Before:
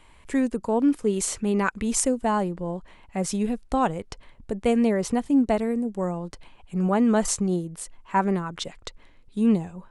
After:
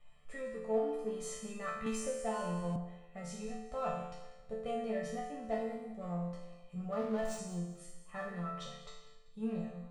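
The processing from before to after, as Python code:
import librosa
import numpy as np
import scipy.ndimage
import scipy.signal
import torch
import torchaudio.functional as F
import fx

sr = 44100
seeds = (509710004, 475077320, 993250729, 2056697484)

p1 = fx.high_shelf(x, sr, hz=4800.0, db=-11.0)
p2 = p1 + 0.88 * np.pad(p1, (int(1.6 * sr / 1000.0), 0))[:len(p1)]
p3 = np.clip(p2, -10.0 ** (-25.5 / 20.0), 10.0 ** (-25.5 / 20.0))
p4 = p2 + (p3 * librosa.db_to_amplitude(-8.0))
p5 = fx.resonator_bank(p4, sr, root=50, chord='minor', decay_s=0.84)
p6 = fx.backlash(p5, sr, play_db=-47.0, at=(6.99, 7.39))
p7 = p6 + fx.echo_feedback(p6, sr, ms=193, feedback_pct=37, wet_db=-14.5, dry=0)
p8 = fx.band_squash(p7, sr, depth_pct=70, at=(1.86, 2.76))
y = p8 * librosa.db_to_amplitude(4.5)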